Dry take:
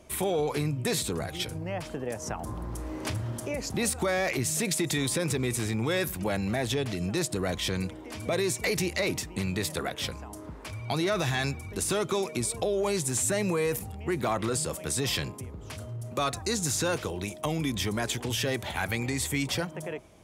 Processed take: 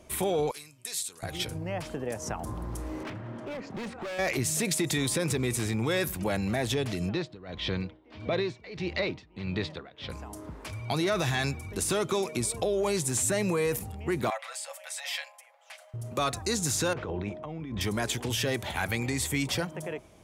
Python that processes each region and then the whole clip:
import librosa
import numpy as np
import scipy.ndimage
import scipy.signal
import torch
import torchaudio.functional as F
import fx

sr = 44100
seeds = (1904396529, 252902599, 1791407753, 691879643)

y = fx.chain(x, sr, fx.lowpass(hz=11000.0, slope=12),
    fx.pre_emphasis(coefficient=0.97), at=(0.51, 1.23))
y = fx.chain(y, sr, fx.cheby1_bandpass(low_hz=180.0, high_hz=2100.0, order=2),
    fx.overload_stage(gain_db=34.0), at=(3.03, 4.19))
y = fx.chain(y, sr, fx.cheby1_lowpass(hz=4000.0, order=3),
    fx.tremolo(hz=1.6, depth=0.88), at=(7.09, 10.1))
y = fx.chain(y, sr, fx.cheby_ripple_highpass(hz=540.0, ripple_db=9),
    fx.comb(ms=6.0, depth=0.57), at=(14.3, 15.94))
y = fx.chain(y, sr, fx.lowpass(hz=1800.0, slope=12),
    fx.over_compress(threshold_db=-35.0, ratio=-1.0), at=(16.93, 17.81))